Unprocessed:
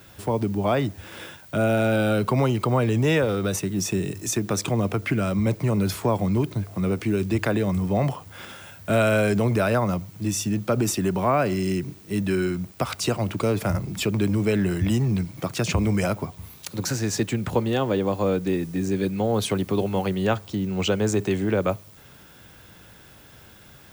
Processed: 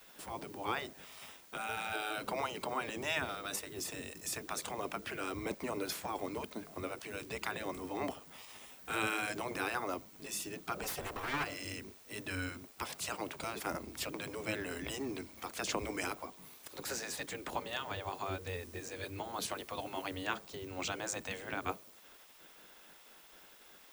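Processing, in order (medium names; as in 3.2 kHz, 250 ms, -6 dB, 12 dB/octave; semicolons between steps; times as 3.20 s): 10.83–11.44 s: comb filter that takes the minimum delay 3.8 ms; spectral gate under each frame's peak -10 dB weak; trim -6.5 dB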